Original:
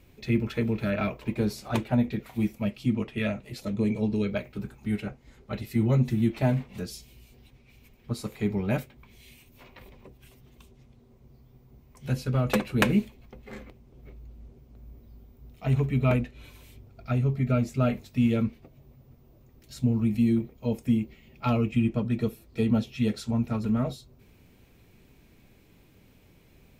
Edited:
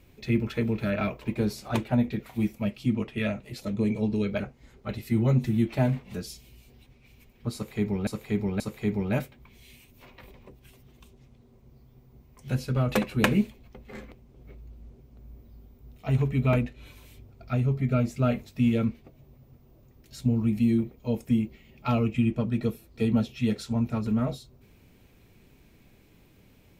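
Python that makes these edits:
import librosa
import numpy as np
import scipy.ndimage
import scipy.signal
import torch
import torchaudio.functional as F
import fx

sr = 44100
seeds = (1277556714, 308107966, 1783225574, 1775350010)

y = fx.edit(x, sr, fx.cut(start_s=4.4, length_s=0.64),
    fx.repeat(start_s=8.18, length_s=0.53, count=3), tone=tone)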